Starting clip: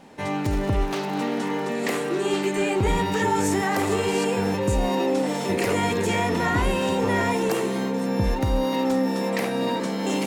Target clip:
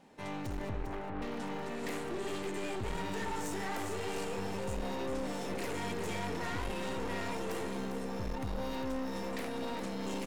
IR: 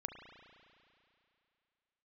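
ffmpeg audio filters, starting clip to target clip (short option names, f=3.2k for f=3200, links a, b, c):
-filter_complex "[0:a]asettb=1/sr,asplit=3[a][b][c];[a]atrim=end=0.694[d];[b]atrim=start=0.69:end=1.22,asetpts=PTS-STARTPTS,afade=t=in:d=0.004:c=qsin,afade=t=out:st=0.526:d=0.004:c=qsin,lowpass=f=2.1k:w=0.5412,lowpass=f=2.1k:w=1.3066[e];[c]atrim=start=1.216[f];[d][e]acrossfade=d=0.004:c1=hsin:c2=qsin[g];[g][f]acrossfade=d=0.004:c1=qsin:c2=hsin,aeval=exprs='(tanh(20*val(0)+0.65)-tanh(0.65))/20':c=same,asplit=2[h][i];[i]aecho=0:1:401:0.376[j];[h][j]amix=inputs=2:normalize=0,volume=-8.5dB"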